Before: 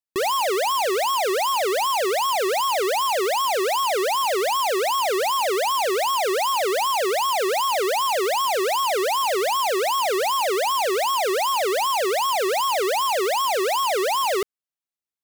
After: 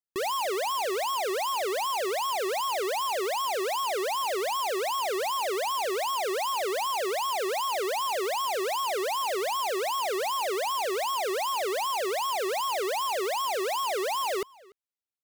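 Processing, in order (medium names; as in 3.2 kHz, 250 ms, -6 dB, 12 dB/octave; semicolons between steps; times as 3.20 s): echo from a far wall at 50 m, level -24 dB; trim -7 dB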